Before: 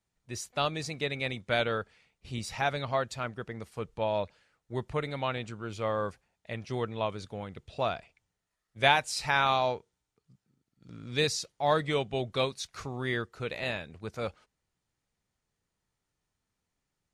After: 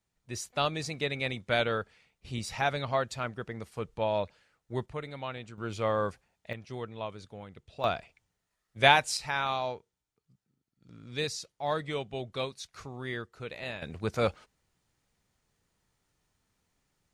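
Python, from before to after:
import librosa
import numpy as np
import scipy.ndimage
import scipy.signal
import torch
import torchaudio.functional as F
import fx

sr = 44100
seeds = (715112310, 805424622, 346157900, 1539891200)

y = fx.gain(x, sr, db=fx.steps((0.0, 0.5), (4.86, -6.0), (5.58, 2.0), (6.53, -6.0), (7.84, 2.5), (9.17, -5.0), (13.82, 7.0)))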